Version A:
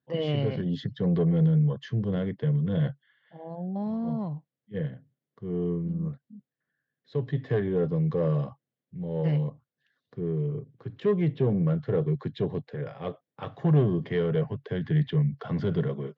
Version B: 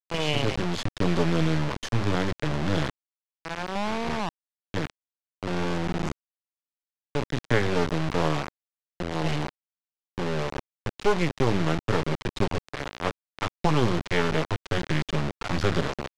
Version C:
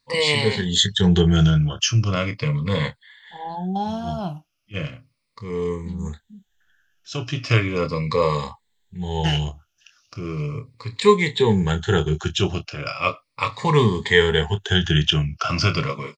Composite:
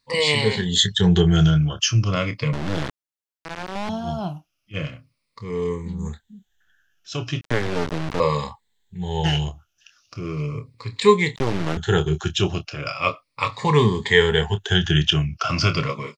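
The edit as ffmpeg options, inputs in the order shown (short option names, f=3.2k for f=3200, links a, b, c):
-filter_complex "[1:a]asplit=3[a][b][c];[2:a]asplit=4[d][e][f][g];[d]atrim=end=2.532[h];[a]atrim=start=2.528:end=3.892[i];[e]atrim=start=3.888:end=7.412[j];[b]atrim=start=7.408:end=8.202[k];[f]atrim=start=8.198:end=11.362[l];[c]atrim=start=11.358:end=11.772[m];[g]atrim=start=11.768[n];[h][i]acrossfade=d=0.004:c1=hsin:c2=hsin[o];[o][j]acrossfade=d=0.004:c1=hsin:c2=hsin[p];[p][k]acrossfade=d=0.004:c1=hsin:c2=hsin[q];[q][l]acrossfade=d=0.004:c1=hsin:c2=hsin[r];[r][m]acrossfade=d=0.004:c1=hsin:c2=hsin[s];[s][n]acrossfade=d=0.004:c1=hsin:c2=hsin"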